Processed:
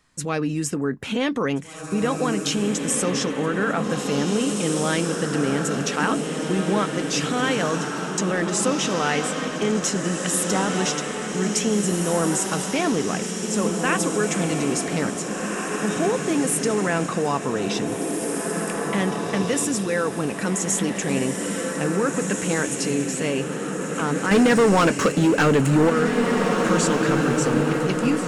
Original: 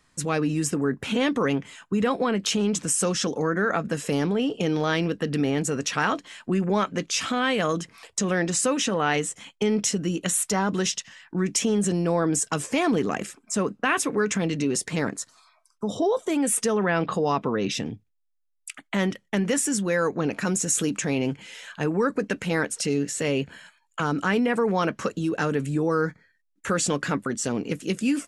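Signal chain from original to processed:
0:24.31–0:25.90: leveller curve on the samples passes 3
feedback delay with all-pass diffusion 1,871 ms, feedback 48%, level −3 dB

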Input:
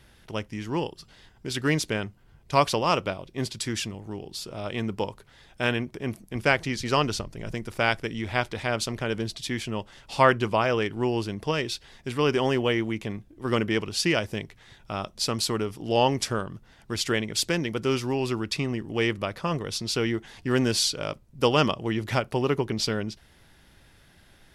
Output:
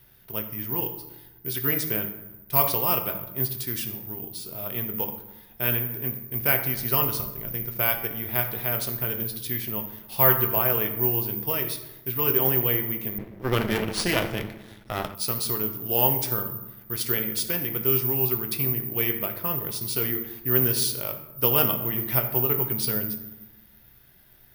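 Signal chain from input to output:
convolution reverb RT60 1.0 s, pre-delay 4 ms, DRR 4 dB
bad sample-rate conversion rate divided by 3×, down filtered, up zero stuff
0:13.18–0:15.15: windowed peak hold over 3 samples
level −6 dB

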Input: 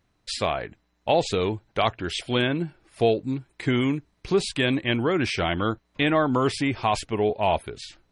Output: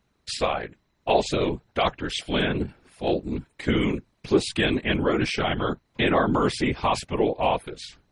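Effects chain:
random phases in short frames
0:02.66–0:03.48: transient designer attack −11 dB, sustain +3 dB

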